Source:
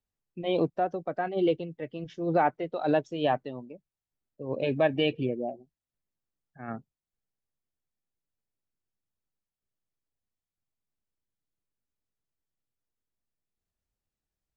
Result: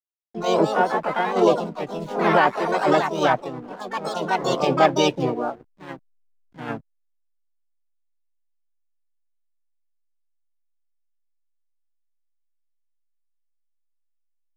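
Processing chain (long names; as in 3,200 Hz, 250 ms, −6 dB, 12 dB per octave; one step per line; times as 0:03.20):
pitch-shifted copies added +3 semitones −13 dB, +4 semitones −2 dB, +12 semitones −5 dB
delay with pitch and tempo change per echo 269 ms, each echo +3 semitones, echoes 2, each echo −6 dB
slack as between gear wheels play −46.5 dBFS
level +4 dB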